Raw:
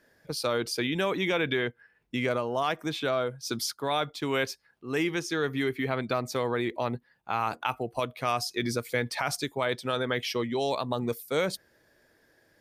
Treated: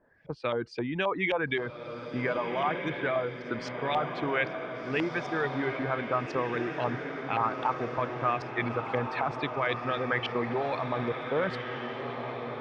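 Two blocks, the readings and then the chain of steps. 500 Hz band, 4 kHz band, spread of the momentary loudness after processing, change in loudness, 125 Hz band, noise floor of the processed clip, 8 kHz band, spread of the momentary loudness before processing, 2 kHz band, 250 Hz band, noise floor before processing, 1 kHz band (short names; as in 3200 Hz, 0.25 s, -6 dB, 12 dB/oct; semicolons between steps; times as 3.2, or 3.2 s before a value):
-1.0 dB, -7.0 dB, 6 LU, -1.0 dB, -0.5 dB, -42 dBFS, under -20 dB, 5 LU, +0.5 dB, -1.5 dB, -67 dBFS, +1.5 dB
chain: notch 1400 Hz, Q 22; reverb removal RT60 0.77 s; steep low-pass 8900 Hz 96 dB/oct; low shelf 120 Hz +6 dB; LFO low-pass saw up 3.8 Hz 820–3100 Hz; diffused feedback echo 1.532 s, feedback 56%, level -6 dB; gain -3 dB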